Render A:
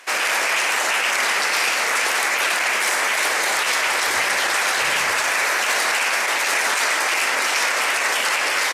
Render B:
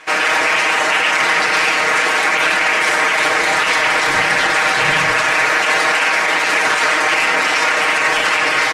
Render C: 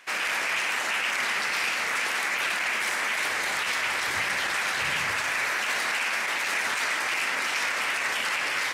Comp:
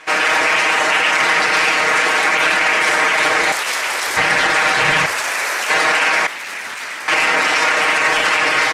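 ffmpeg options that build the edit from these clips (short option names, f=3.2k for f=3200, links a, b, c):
-filter_complex "[0:a]asplit=2[a][b];[1:a]asplit=4[c][d][e][f];[c]atrim=end=3.522[g];[a]atrim=start=3.518:end=4.172[h];[d]atrim=start=4.168:end=5.062[i];[b]atrim=start=5.058:end=5.702[j];[e]atrim=start=5.698:end=6.272[k];[2:a]atrim=start=6.268:end=7.082[l];[f]atrim=start=7.078[m];[g][h]acrossfade=d=0.004:c1=hsin:c2=hsin[n];[n][i]acrossfade=d=0.004:c1=hsin:c2=hsin[o];[o][j]acrossfade=d=0.004:c1=hsin:c2=hsin[p];[p][k]acrossfade=d=0.004:c1=hsin:c2=hsin[q];[q][l]acrossfade=d=0.004:c1=hsin:c2=hsin[r];[r][m]acrossfade=d=0.004:c1=hsin:c2=hsin"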